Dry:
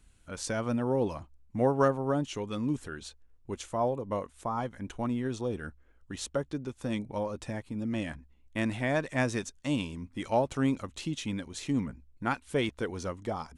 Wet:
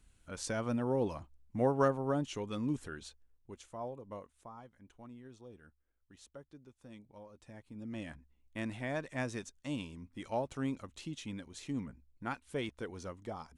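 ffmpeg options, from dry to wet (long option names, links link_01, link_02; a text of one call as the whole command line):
ffmpeg -i in.wav -af "volume=7.5dB,afade=type=out:start_time=2.91:duration=0.64:silence=0.354813,afade=type=out:start_time=4.17:duration=0.46:silence=0.446684,afade=type=in:start_time=7.37:duration=0.71:silence=0.266073" out.wav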